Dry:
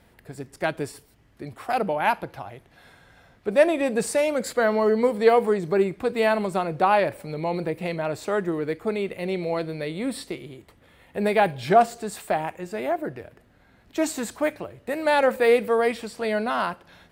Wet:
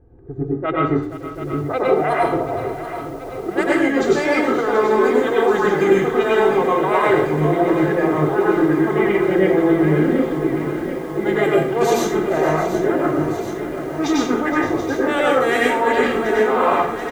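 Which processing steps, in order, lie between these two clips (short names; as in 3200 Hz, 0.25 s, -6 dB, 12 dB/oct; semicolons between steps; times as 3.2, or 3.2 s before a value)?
low-pass opened by the level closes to 380 Hz, open at -15.5 dBFS; bell 1200 Hz +3 dB 2.1 oct; notches 60/120/180/240/300/360 Hz; comb 2.5 ms, depth 76%; reverse; compressor 8:1, threshold -26 dBFS, peak gain reduction 19 dB; reverse; formant shift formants -3 st; on a send: echo 0.47 s -14 dB; on the sum: plate-style reverb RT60 0.54 s, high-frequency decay 0.8×, pre-delay 85 ms, DRR -4.5 dB; lo-fi delay 0.732 s, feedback 80%, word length 8-bit, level -11 dB; gain +7 dB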